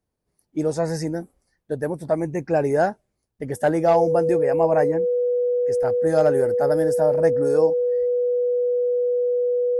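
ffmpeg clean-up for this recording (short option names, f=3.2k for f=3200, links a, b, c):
-af "bandreject=f=490:w=30"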